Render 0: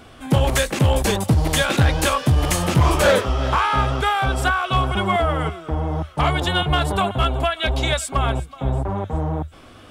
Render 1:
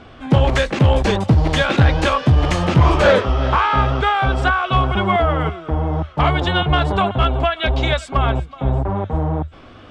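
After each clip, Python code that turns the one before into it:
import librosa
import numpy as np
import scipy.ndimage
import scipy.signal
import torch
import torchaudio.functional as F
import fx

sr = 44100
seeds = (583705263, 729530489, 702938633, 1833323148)

y = fx.air_absorb(x, sr, metres=150.0)
y = F.gain(torch.from_numpy(y), 3.5).numpy()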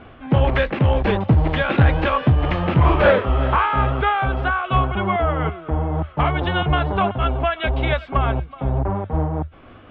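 y = scipy.signal.sosfilt(scipy.signal.butter(4, 3000.0, 'lowpass', fs=sr, output='sos'), x)
y = fx.am_noise(y, sr, seeds[0], hz=5.7, depth_pct=50)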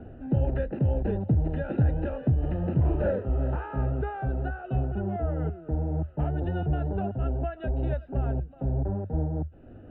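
y = np.convolve(x, np.full(40, 1.0 / 40))[:len(x)]
y = fx.band_squash(y, sr, depth_pct=40)
y = F.gain(torch.from_numpy(y), -6.5).numpy()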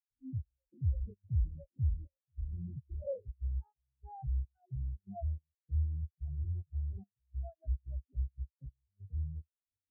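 y = np.clip(10.0 ** (30.0 / 20.0) * x, -1.0, 1.0) / 10.0 ** (30.0 / 20.0)
y = fx.step_gate(y, sr, bpm=145, pattern='.xxx...xxxx.xxxx', floor_db=-12.0, edge_ms=4.5)
y = fx.spectral_expand(y, sr, expansion=4.0)
y = F.gain(torch.from_numpy(y), 7.0).numpy()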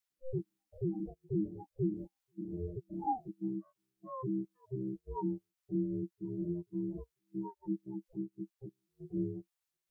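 y = x * np.sin(2.0 * np.pi * 260.0 * np.arange(len(x)) / sr)
y = fx.peak_eq(y, sr, hz=240.0, db=-14.5, octaves=1.1)
y = fx.am_noise(y, sr, seeds[1], hz=5.7, depth_pct=55)
y = F.gain(torch.from_numpy(y), 12.5).numpy()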